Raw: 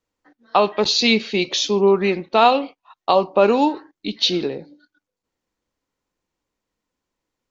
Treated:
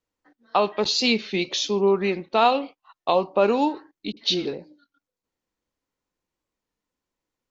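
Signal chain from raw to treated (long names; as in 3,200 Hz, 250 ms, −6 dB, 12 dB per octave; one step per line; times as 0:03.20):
0:04.12–0:04.54: all-pass dispersion highs, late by 48 ms, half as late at 450 Hz
wow of a warped record 33 1/3 rpm, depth 100 cents
level −4.5 dB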